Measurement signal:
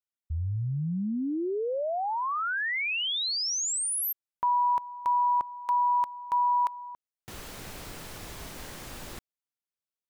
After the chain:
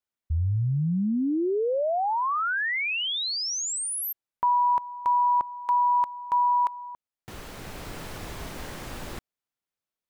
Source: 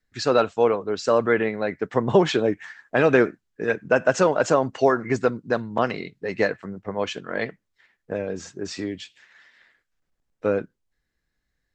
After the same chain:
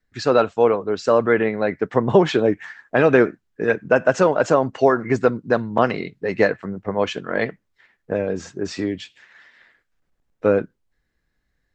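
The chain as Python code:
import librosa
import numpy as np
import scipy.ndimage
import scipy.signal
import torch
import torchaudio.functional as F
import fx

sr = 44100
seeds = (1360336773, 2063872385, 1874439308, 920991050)

p1 = fx.high_shelf(x, sr, hz=3400.0, db=-7.0)
p2 = fx.rider(p1, sr, range_db=3, speed_s=0.5)
p3 = p1 + F.gain(torch.from_numpy(p2), 0.0).numpy()
y = F.gain(torch.from_numpy(p3), -2.0).numpy()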